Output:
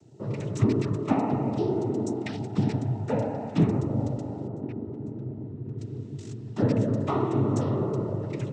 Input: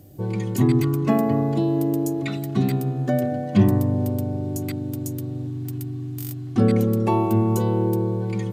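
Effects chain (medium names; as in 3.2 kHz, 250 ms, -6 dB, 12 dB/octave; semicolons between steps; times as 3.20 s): 4.47–5.78 s: low-pass 1.3 kHz 12 dB/octave; noise-vocoded speech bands 12; trim -5 dB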